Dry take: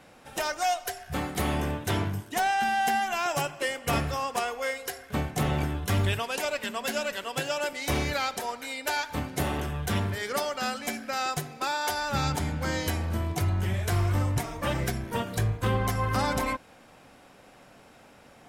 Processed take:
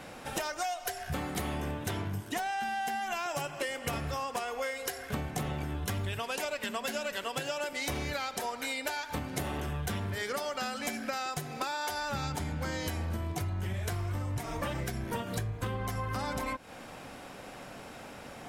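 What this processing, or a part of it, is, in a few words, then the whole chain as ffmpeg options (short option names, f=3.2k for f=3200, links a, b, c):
serial compression, leveller first: -af "acompressor=threshold=-29dB:ratio=2.5,acompressor=threshold=-40dB:ratio=5,volume=7.5dB"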